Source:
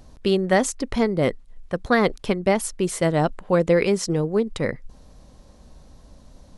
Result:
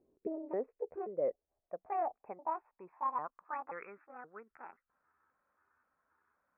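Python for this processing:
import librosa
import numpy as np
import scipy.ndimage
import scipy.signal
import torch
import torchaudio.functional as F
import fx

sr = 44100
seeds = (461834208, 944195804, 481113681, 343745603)

y = fx.pitch_trill(x, sr, semitones=8.5, every_ms=265)
y = scipy.signal.sosfilt(scipy.signal.cheby1(10, 1.0, 2600.0, 'lowpass', fs=sr, output='sos'), y)
y = fx.filter_sweep_bandpass(y, sr, from_hz=380.0, to_hz=1400.0, start_s=0.17, end_s=3.99, q=6.1)
y = y * 10.0 ** (-6.5 / 20.0)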